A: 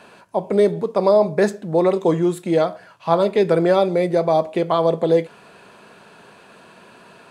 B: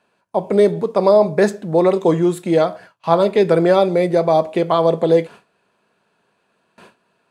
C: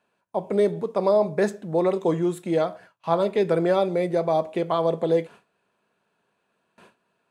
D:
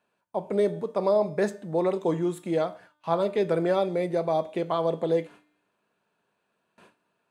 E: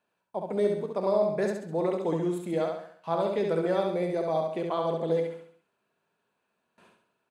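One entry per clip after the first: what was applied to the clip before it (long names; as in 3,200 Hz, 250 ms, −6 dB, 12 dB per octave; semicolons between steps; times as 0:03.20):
noise gate with hold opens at −34 dBFS; level +2.5 dB
parametric band 4,600 Hz −3.5 dB 0.29 octaves; level −7.5 dB
tuned comb filter 300 Hz, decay 0.79 s, mix 60%; level +4.5 dB
repeating echo 68 ms, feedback 44%, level −4 dB; level −4 dB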